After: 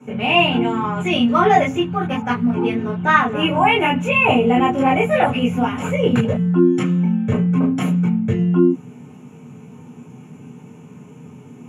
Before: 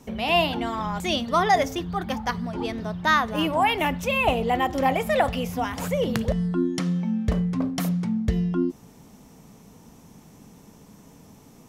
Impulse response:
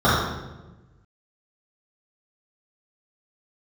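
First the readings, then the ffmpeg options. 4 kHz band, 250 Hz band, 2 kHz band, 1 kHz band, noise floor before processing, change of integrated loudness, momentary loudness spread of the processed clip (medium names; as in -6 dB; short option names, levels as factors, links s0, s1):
+5.0 dB, +9.0 dB, +7.0 dB, +5.5 dB, -51 dBFS, +7.0 dB, 6 LU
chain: -filter_complex "[0:a]bandreject=f=57.8:t=h:w=4,bandreject=f=115.6:t=h:w=4,bandreject=f=173.4:t=h:w=4,bandreject=f=231.2:t=h:w=4,bandreject=f=289:t=h:w=4[s0];[1:a]atrim=start_sample=2205,atrim=end_sample=3969,asetrate=83790,aresample=44100[s1];[s0][s1]afir=irnorm=-1:irlink=0,volume=0.237"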